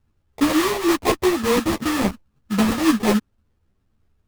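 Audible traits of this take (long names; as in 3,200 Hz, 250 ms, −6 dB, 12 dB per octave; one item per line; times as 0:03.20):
phaser sweep stages 12, 3.5 Hz, lowest notch 530–1,100 Hz
aliases and images of a low sample rate 1,500 Hz, jitter 20%
a shimmering, thickened sound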